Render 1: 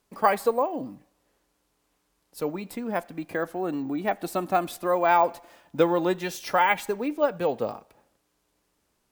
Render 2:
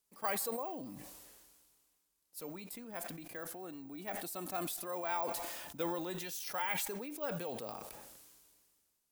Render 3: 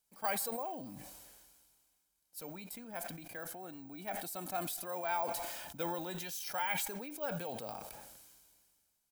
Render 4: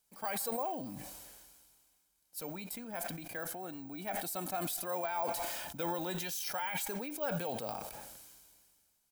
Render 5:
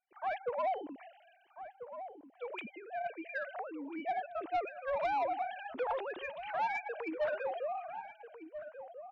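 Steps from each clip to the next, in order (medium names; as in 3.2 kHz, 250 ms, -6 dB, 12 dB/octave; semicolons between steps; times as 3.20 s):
pre-emphasis filter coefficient 0.8; decay stretcher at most 29 dB/s; trim -5 dB
comb 1.3 ms, depth 36%
peak limiter -29 dBFS, peak gain reduction 10.5 dB; trim +4 dB
formants replaced by sine waves; saturation -30.5 dBFS, distortion -14 dB; echo from a far wall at 230 m, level -10 dB; trim +3 dB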